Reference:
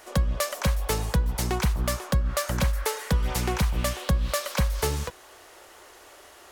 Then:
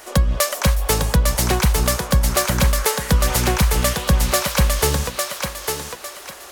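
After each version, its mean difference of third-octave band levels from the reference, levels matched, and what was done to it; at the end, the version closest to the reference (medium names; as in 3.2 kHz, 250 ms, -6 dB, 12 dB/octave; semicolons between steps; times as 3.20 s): 5.0 dB: treble shelf 5 kHz +4.5 dB; on a send: thinning echo 853 ms, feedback 33%, high-pass 320 Hz, level -4 dB; on the sum: trim +7 dB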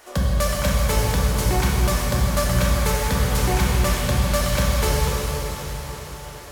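8.5 dB: echo that smears into a reverb 453 ms, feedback 59%, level -12 dB; plate-style reverb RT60 3.9 s, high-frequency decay 0.95×, DRR -4.5 dB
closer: first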